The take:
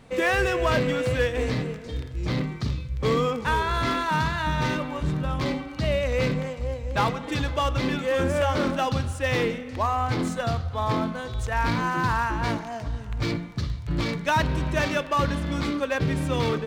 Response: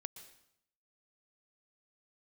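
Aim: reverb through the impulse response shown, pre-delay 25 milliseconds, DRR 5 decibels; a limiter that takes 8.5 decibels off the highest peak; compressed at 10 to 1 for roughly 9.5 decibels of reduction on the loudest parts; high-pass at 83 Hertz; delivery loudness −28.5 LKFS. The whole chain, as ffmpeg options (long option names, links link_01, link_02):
-filter_complex "[0:a]highpass=83,acompressor=threshold=-29dB:ratio=10,alimiter=level_in=2.5dB:limit=-24dB:level=0:latency=1,volume=-2.5dB,asplit=2[link_01][link_02];[1:a]atrim=start_sample=2205,adelay=25[link_03];[link_02][link_03]afir=irnorm=-1:irlink=0,volume=-1dB[link_04];[link_01][link_04]amix=inputs=2:normalize=0,volume=6dB"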